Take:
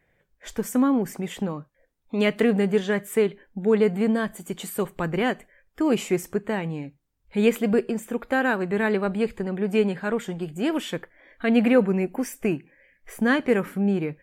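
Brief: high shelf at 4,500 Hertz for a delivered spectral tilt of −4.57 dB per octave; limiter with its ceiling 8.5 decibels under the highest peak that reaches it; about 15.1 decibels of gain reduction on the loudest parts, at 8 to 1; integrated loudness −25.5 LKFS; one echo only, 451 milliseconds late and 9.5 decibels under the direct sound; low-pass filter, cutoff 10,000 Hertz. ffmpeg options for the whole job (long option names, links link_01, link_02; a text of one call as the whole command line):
ffmpeg -i in.wav -af "lowpass=10000,highshelf=frequency=4500:gain=8.5,acompressor=threshold=-30dB:ratio=8,alimiter=level_in=2.5dB:limit=-24dB:level=0:latency=1,volume=-2.5dB,aecho=1:1:451:0.335,volume=11.5dB" out.wav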